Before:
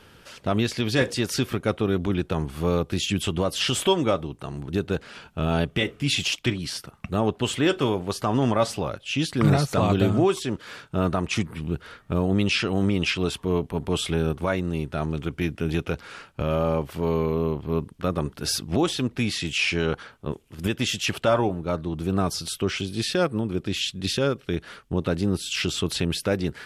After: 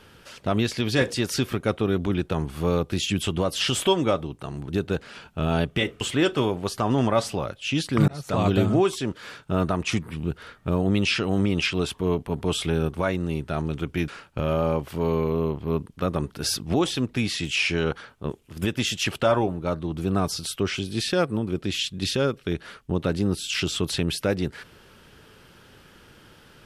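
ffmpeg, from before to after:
-filter_complex "[0:a]asplit=4[a][b][c][d];[a]atrim=end=6.012[e];[b]atrim=start=7.448:end=9.52,asetpts=PTS-STARTPTS,afade=t=out:st=2.068:d=0.004:c=hsin[f];[c]atrim=start=9.52:end=15.522,asetpts=PTS-STARTPTS,afade=t=in:d=0.37[g];[d]atrim=start=16.098[h];[f][g]concat=n=2:v=0:a=1[i];[e][i]acrossfade=d=0.004:c1=hsin:c2=hsin[j];[j][h]acrossfade=d=0.004:c1=hsin:c2=hsin"

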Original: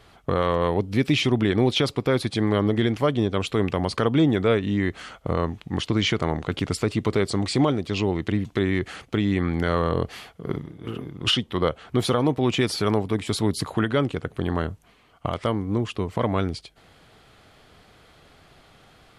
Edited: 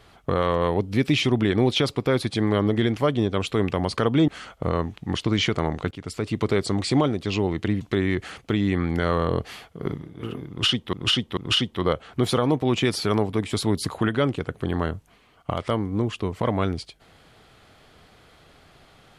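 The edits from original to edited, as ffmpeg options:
-filter_complex "[0:a]asplit=5[a][b][c][d][e];[a]atrim=end=4.282[f];[b]atrim=start=4.918:end=6.55,asetpts=PTS-STARTPTS,afade=t=out:st=1.628:d=0.004:c=hsin:silence=0.149624[g];[c]atrim=start=6.55:end=11.572,asetpts=PTS-STARTPTS,afade=t=in:d=0.54:silence=0.149624[h];[d]atrim=start=11.128:end=11.572[i];[e]atrim=start=11.128[j];[g][h]concat=n=2:v=0:a=1[k];[f][k]acrossfade=d=0.004:c1=hsin:c2=hsin[l];[l][i]acrossfade=d=0.004:c1=hsin:c2=hsin[m];[m][j]acrossfade=d=0.004:c1=hsin:c2=hsin"

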